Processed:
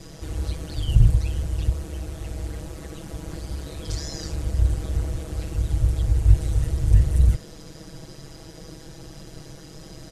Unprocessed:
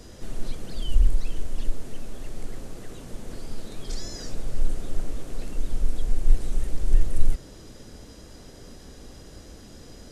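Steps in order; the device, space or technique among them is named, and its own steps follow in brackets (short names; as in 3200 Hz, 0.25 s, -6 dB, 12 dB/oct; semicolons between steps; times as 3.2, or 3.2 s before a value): ring-modulated robot voice (ring modulator 74 Hz; comb 6.2 ms, depth 90%); gain +4 dB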